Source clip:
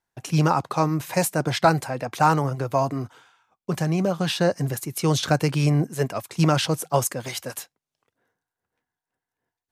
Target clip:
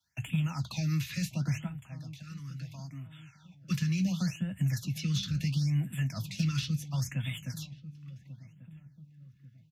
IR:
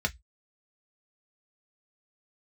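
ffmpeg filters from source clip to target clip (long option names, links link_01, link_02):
-filter_complex "[0:a]alimiter=limit=-15dB:level=0:latency=1:release=83,firequalizer=gain_entry='entry(100,0);entry(400,-26);entry(700,-16);entry(2800,15);entry(8700,1);entry(13000,13)':delay=0.05:min_phase=1,acrossover=split=310|4300[link_01][link_02][link_03];[link_01]acompressor=threshold=-35dB:ratio=4[link_04];[link_02]acompressor=threshold=-45dB:ratio=4[link_05];[link_03]acompressor=threshold=-43dB:ratio=4[link_06];[link_04][link_05][link_06]amix=inputs=3:normalize=0,crystalizer=i=1:c=0,asettb=1/sr,asplit=3[link_07][link_08][link_09];[link_07]atrim=end=1.674[link_10];[link_08]atrim=start=1.67:end=3.7,asetpts=PTS-STARTPTS,afade=type=in:duration=0.004:curve=qsin,afade=type=out:start_time=2.026:duration=0.004:curve=qsin,acompressor=threshold=-52dB:ratio=3[link_11];[link_09]atrim=start=3.696[link_12];[link_10][link_11]acrossfade=duration=0.004:curve1=hsin:curve2=qsin[link_13];[link_13][link_12]acrossfade=duration=0.004:curve1=qsin:curve2=hsin,acrossover=split=160 7900:gain=0.2 1 0.158[link_14][link_15][link_16];[link_14][link_15][link_16]amix=inputs=3:normalize=0,asoftclip=type=tanh:threshold=-25dB,asplit=2[link_17][link_18];[link_18]adelay=1140,lowpass=frequency=830:poles=1,volume=-15dB,asplit=2[link_19][link_20];[link_20]adelay=1140,lowpass=frequency=830:poles=1,volume=0.46,asplit=2[link_21][link_22];[link_22]adelay=1140,lowpass=frequency=830:poles=1,volume=0.46,asplit=2[link_23][link_24];[link_24]adelay=1140,lowpass=frequency=830:poles=1,volume=0.46[link_25];[link_17][link_19][link_21][link_23][link_25]amix=inputs=5:normalize=0,asplit=2[link_26][link_27];[1:a]atrim=start_sample=2205,lowshelf=frequency=280:gain=9.5[link_28];[link_27][link_28]afir=irnorm=-1:irlink=0,volume=-5.5dB[link_29];[link_26][link_29]amix=inputs=2:normalize=0,afftfilt=real='re*(1-between(b*sr/1024,680*pow(5300/680,0.5+0.5*sin(2*PI*0.72*pts/sr))/1.41,680*pow(5300/680,0.5+0.5*sin(2*PI*0.72*pts/sr))*1.41))':imag='im*(1-between(b*sr/1024,680*pow(5300/680,0.5+0.5*sin(2*PI*0.72*pts/sr))/1.41,680*pow(5300/680,0.5+0.5*sin(2*PI*0.72*pts/sr))*1.41))':win_size=1024:overlap=0.75"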